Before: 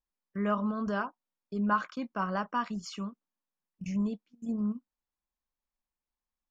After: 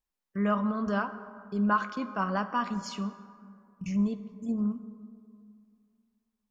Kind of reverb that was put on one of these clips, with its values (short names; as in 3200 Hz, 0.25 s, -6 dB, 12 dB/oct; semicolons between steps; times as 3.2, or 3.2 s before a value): plate-style reverb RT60 2.4 s, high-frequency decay 0.4×, DRR 11 dB; gain +2 dB